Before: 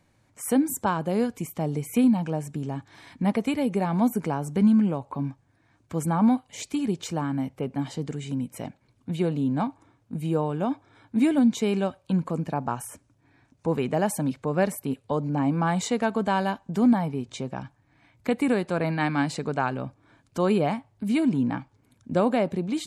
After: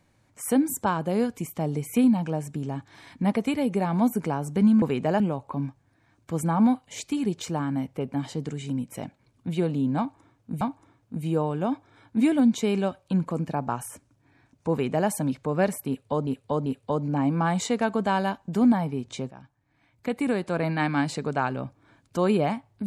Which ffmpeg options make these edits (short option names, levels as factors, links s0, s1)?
-filter_complex "[0:a]asplit=7[s0][s1][s2][s3][s4][s5][s6];[s0]atrim=end=4.822[s7];[s1]atrim=start=13.698:end=14.082[s8];[s2]atrim=start=4.818:end=10.232[s9];[s3]atrim=start=9.598:end=15.262[s10];[s4]atrim=start=14.868:end=15.262[s11];[s5]atrim=start=14.868:end=17.52,asetpts=PTS-STARTPTS,afade=t=out:st=2.648:d=0.004:c=hsin:silence=0.211349[s12];[s6]atrim=start=17.52,asetpts=PTS-STARTPTS,afade=t=in:d=1.38:silence=0.211349[s13];[s7][s8]acrossfade=d=0.004:c1=hsin:c2=hsin[s14];[s14][s9]acrossfade=d=0.004:c1=hsin:c2=hsin[s15];[s15][s10]acrossfade=d=0.004:c1=hsin:c2=hsin[s16];[s16][s11]acrossfade=d=0.004:c1=hsin:c2=hsin[s17];[s12][s13]concat=n=2:v=0:a=1[s18];[s17][s18]acrossfade=d=0.004:c1=hsin:c2=hsin"